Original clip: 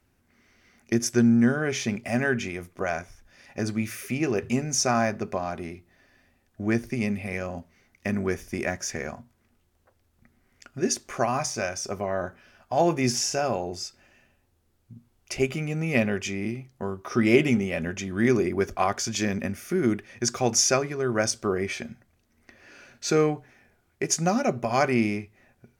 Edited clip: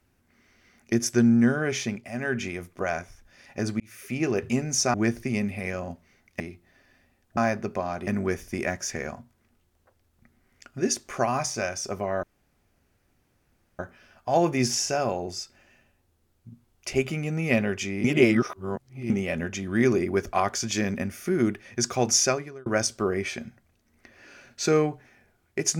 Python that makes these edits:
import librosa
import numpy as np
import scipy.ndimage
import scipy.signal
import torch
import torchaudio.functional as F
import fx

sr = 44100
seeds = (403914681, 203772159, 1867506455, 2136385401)

y = fx.edit(x, sr, fx.fade_down_up(start_s=1.78, length_s=0.67, db=-9.0, fade_s=0.32),
    fx.fade_in_span(start_s=3.8, length_s=0.43),
    fx.swap(start_s=4.94, length_s=0.7, other_s=6.61, other_length_s=1.46),
    fx.insert_room_tone(at_s=12.23, length_s=1.56),
    fx.reverse_span(start_s=16.48, length_s=1.06),
    fx.fade_out_span(start_s=20.67, length_s=0.43), tone=tone)